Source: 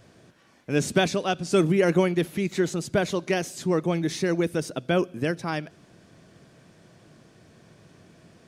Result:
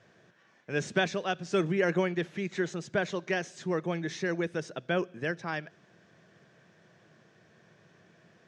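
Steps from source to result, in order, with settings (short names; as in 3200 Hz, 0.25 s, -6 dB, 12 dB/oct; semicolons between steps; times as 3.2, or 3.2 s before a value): speaker cabinet 140–6400 Hz, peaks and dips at 270 Hz -9 dB, 1700 Hz +7 dB, 4600 Hz -5 dB; gain -5.5 dB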